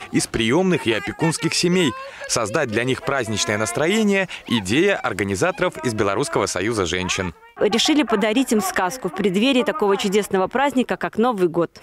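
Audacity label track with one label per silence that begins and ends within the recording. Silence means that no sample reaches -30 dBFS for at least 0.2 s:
7.300000	7.570000	silence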